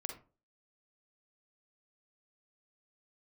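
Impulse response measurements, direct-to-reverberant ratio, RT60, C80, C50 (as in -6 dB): 3.5 dB, 0.35 s, 13.5 dB, 6.5 dB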